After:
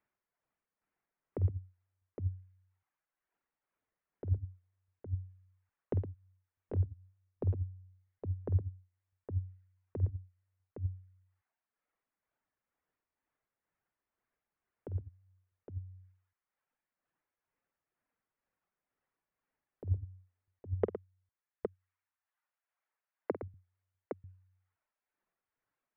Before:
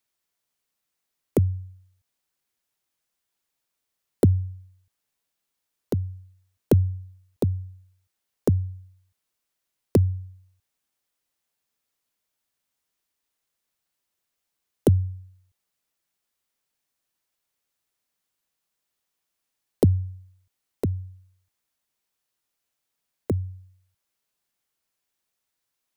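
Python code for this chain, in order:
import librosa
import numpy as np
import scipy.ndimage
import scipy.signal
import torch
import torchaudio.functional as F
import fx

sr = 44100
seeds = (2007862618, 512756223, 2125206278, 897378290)

y = scipy.signal.sosfilt(scipy.signal.butter(4, 2000.0, 'lowpass', fs=sr, output='sos'), x)
y = fx.dereverb_blind(y, sr, rt60_s=1.4)
y = fx.highpass(y, sr, hz=680.0, slope=12, at=(20.84, 23.43))
y = fx.over_compress(y, sr, threshold_db=-24.0, ratio=-0.5)
y = 10.0 ** (-11.5 / 20.0) * np.tanh(y / 10.0 ** (-11.5 / 20.0))
y = y * (1.0 - 0.53 / 2.0 + 0.53 / 2.0 * np.cos(2.0 * np.pi * 2.1 * (np.arange(len(y)) / sr)))
y = fx.echo_multitap(y, sr, ms=(49, 113, 813), db=(-11.5, -10.5, -5.5))
y = y * librosa.db_to_amplitude(-2.5)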